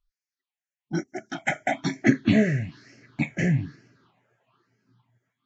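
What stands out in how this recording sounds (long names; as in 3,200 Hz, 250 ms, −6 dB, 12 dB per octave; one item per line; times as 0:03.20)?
phaser sweep stages 6, 1.1 Hz, lowest notch 270–1,000 Hz
Ogg Vorbis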